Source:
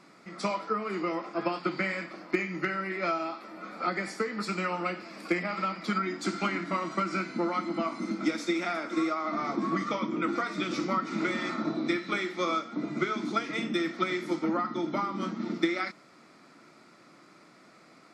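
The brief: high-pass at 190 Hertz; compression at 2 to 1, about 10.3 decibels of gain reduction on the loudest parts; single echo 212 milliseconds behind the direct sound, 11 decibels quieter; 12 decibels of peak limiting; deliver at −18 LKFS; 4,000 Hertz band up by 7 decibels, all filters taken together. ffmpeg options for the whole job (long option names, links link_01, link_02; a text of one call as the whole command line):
ffmpeg -i in.wav -af "highpass=190,equalizer=frequency=4000:width_type=o:gain=8.5,acompressor=threshold=-41dB:ratio=2,alimiter=level_in=9dB:limit=-24dB:level=0:latency=1,volume=-9dB,aecho=1:1:212:0.282,volume=23.5dB" out.wav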